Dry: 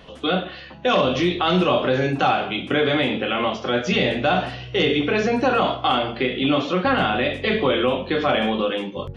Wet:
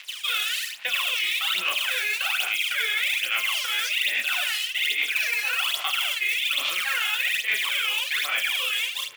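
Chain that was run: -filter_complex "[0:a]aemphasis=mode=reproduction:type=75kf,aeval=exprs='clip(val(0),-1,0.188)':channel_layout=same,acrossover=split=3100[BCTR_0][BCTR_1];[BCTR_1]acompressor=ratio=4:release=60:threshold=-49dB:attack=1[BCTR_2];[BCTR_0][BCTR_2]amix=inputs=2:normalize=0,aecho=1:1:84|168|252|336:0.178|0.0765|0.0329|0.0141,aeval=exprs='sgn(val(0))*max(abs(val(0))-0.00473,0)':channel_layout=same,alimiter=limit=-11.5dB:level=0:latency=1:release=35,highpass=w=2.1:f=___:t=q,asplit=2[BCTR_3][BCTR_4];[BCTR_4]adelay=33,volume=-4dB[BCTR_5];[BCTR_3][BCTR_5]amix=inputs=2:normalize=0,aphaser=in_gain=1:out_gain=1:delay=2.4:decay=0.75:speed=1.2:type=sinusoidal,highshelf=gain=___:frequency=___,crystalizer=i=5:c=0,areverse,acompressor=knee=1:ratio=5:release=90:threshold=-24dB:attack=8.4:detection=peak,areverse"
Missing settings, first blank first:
2.3k, 7.5, 5.4k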